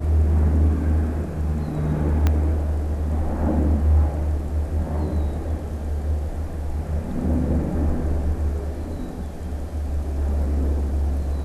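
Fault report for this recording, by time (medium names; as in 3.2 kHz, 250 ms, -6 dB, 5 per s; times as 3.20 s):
2.27 s: pop -8 dBFS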